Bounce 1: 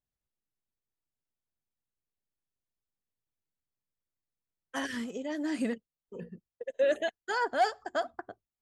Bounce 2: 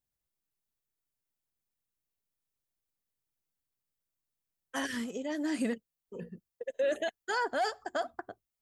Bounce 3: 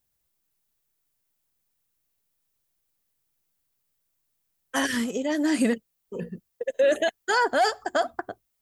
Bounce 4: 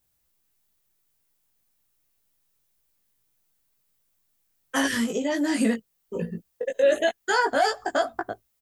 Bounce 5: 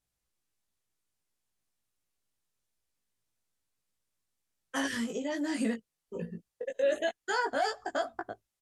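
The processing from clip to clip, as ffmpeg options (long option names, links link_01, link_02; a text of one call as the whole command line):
ffmpeg -i in.wav -af "highshelf=frequency=8800:gain=8,alimiter=limit=-23dB:level=0:latency=1:release=14" out.wav
ffmpeg -i in.wav -af "highshelf=frequency=9600:gain=5,volume=9dB" out.wav
ffmpeg -i in.wav -filter_complex "[0:a]asplit=2[link_01][link_02];[link_02]acompressor=threshold=-28dB:ratio=6,volume=2dB[link_03];[link_01][link_03]amix=inputs=2:normalize=0,asplit=2[link_04][link_05];[link_05]adelay=18,volume=-3dB[link_06];[link_04][link_06]amix=inputs=2:normalize=0,volume=-5dB" out.wav
ffmpeg -i in.wav -af "lowpass=9900,volume=-8dB" out.wav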